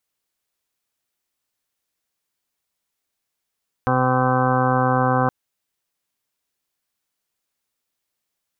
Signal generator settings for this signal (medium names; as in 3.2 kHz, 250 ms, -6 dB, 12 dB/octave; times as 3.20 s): steady additive tone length 1.42 s, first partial 128 Hz, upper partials -1.5/-11/-1/-17/0/-13/-2.5/-6/-6/-16.5/-7 dB, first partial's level -22 dB